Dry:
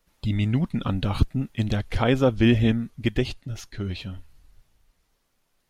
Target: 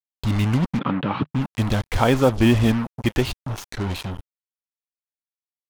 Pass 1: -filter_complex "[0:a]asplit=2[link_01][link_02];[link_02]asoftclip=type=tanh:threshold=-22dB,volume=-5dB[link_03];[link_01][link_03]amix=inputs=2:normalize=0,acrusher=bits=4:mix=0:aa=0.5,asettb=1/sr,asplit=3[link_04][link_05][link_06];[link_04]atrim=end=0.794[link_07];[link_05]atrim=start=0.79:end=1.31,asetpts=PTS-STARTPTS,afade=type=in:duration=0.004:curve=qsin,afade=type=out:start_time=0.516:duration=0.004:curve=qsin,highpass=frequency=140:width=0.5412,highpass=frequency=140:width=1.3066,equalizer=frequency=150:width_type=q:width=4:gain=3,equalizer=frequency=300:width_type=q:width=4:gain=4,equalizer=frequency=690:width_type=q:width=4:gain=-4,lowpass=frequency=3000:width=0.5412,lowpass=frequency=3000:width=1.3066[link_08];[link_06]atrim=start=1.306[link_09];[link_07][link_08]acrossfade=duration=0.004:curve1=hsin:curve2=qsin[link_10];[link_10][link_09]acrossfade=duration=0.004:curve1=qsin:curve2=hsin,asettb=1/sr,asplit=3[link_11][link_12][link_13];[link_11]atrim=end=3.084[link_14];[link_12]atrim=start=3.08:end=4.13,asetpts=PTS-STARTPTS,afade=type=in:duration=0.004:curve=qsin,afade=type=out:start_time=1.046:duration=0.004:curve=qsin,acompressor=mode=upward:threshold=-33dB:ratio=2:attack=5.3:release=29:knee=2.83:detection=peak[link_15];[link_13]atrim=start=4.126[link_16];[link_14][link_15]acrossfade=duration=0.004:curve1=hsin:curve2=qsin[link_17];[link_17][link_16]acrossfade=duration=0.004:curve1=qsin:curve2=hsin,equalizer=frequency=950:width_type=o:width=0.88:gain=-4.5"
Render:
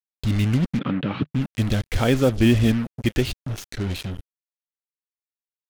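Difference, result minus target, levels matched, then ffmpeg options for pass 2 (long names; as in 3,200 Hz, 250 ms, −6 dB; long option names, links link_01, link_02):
1,000 Hz band −7.0 dB
-filter_complex "[0:a]asplit=2[link_01][link_02];[link_02]asoftclip=type=tanh:threshold=-22dB,volume=-5dB[link_03];[link_01][link_03]amix=inputs=2:normalize=0,acrusher=bits=4:mix=0:aa=0.5,asettb=1/sr,asplit=3[link_04][link_05][link_06];[link_04]atrim=end=0.794[link_07];[link_05]atrim=start=0.79:end=1.31,asetpts=PTS-STARTPTS,afade=type=in:duration=0.004:curve=qsin,afade=type=out:start_time=0.516:duration=0.004:curve=qsin,highpass=frequency=140:width=0.5412,highpass=frequency=140:width=1.3066,equalizer=frequency=150:width_type=q:width=4:gain=3,equalizer=frequency=300:width_type=q:width=4:gain=4,equalizer=frequency=690:width_type=q:width=4:gain=-4,lowpass=frequency=3000:width=0.5412,lowpass=frequency=3000:width=1.3066[link_08];[link_06]atrim=start=1.306[link_09];[link_07][link_08]acrossfade=duration=0.004:curve1=hsin:curve2=qsin[link_10];[link_10][link_09]acrossfade=duration=0.004:curve1=qsin:curve2=hsin,asettb=1/sr,asplit=3[link_11][link_12][link_13];[link_11]atrim=end=3.084[link_14];[link_12]atrim=start=3.08:end=4.13,asetpts=PTS-STARTPTS,afade=type=in:duration=0.004:curve=qsin,afade=type=out:start_time=1.046:duration=0.004:curve=qsin,acompressor=mode=upward:threshold=-33dB:ratio=2:attack=5.3:release=29:knee=2.83:detection=peak[link_15];[link_13]atrim=start=4.126[link_16];[link_14][link_15]acrossfade=duration=0.004:curve1=hsin:curve2=qsin[link_17];[link_17][link_16]acrossfade=duration=0.004:curve1=qsin:curve2=hsin,equalizer=frequency=950:width_type=o:width=0.88:gain=6.5"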